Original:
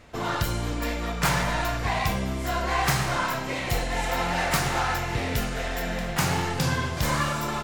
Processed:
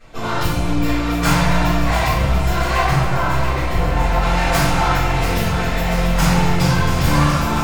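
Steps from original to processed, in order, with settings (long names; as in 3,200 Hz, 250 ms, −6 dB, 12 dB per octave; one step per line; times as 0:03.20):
loose part that buzzes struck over −29 dBFS, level −31 dBFS
0:02.84–0:04.22: high-shelf EQ 2,900 Hz −11.5 dB
delay that swaps between a low-pass and a high-pass 343 ms, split 840 Hz, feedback 83%, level −7 dB
convolution reverb RT60 0.65 s, pre-delay 3 ms, DRR −12.5 dB
level −6.5 dB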